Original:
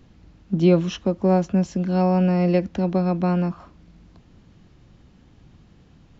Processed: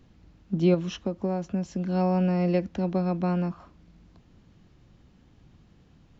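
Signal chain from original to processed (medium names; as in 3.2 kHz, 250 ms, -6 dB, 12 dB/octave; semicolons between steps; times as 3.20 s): 0.74–1.84 s: compression 5:1, threshold -19 dBFS, peak gain reduction 6.5 dB; trim -5 dB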